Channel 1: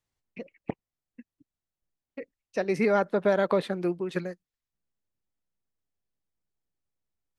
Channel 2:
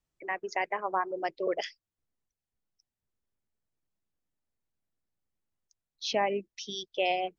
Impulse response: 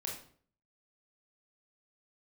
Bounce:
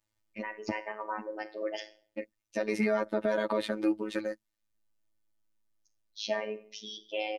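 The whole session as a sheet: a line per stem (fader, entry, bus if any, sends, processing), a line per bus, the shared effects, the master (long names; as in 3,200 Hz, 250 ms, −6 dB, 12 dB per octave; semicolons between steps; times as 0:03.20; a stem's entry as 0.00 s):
+1.0 dB, 0.00 s, no send, no processing
−7.5 dB, 0.15 s, send −6 dB, no processing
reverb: on, RT60 0.50 s, pre-delay 22 ms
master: comb filter 3.3 ms, depth 97%; phases set to zero 107 Hz; brickwall limiter −16.5 dBFS, peak gain reduction 7.5 dB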